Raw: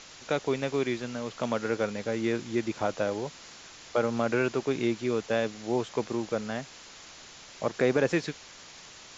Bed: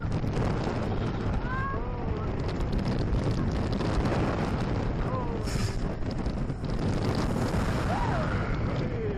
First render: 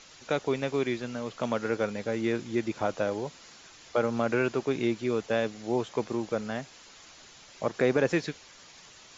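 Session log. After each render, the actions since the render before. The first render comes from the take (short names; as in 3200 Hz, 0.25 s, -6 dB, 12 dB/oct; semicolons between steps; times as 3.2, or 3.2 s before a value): denoiser 6 dB, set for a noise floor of -49 dBFS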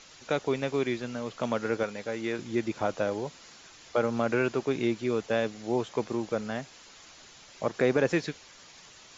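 1.83–2.39 low shelf 350 Hz -8 dB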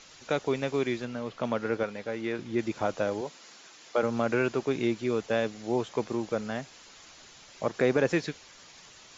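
1.05–2.59 air absorption 99 m; 3.21–4.03 HPF 220 Hz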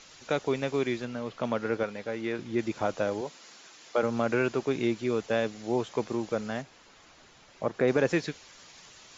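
6.62–7.88 high shelf 3100 Hz -10.5 dB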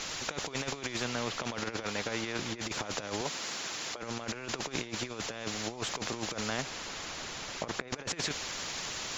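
negative-ratio compressor -34 dBFS, ratio -0.5; spectral compressor 2:1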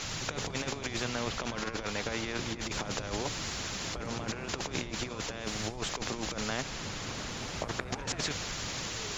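add bed -15 dB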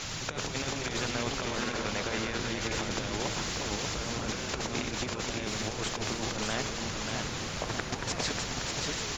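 reverse delay 0.344 s, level -4 dB; echo 0.588 s -5.5 dB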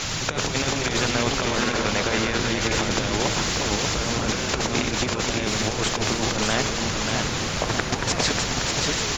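gain +9.5 dB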